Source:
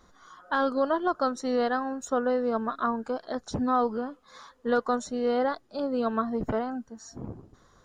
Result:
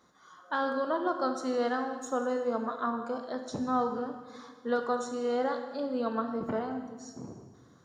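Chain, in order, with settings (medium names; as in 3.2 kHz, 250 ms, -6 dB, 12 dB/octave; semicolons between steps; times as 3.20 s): high-pass 130 Hz 12 dB/octave; on a send: reverberation RT60 1.5 s, pre-delay 12 ms, DRR 5 dB; on the sum: trim -4.5 dB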